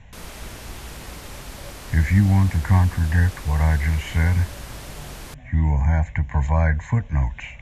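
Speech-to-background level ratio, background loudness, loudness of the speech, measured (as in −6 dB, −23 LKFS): 17.5 dB, −38.5 LKFS, −21.0 LKFS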